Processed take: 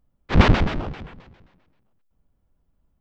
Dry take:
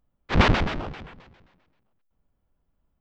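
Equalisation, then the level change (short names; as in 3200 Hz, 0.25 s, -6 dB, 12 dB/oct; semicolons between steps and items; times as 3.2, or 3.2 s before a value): low shelf 430 Hz +5.5 dB; 0.0 dB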